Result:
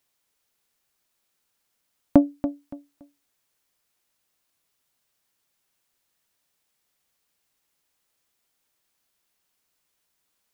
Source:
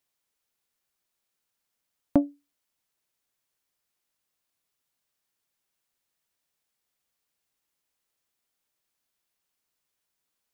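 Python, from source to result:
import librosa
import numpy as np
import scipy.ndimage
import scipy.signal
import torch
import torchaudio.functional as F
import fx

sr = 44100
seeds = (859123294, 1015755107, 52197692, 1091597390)

y = fx.echo_feedback(x, sr, ms=284, feedback_pct=25, wet_db=-12.0)
y = F.gain(torch.from_numpy(y), 6.0).numpy()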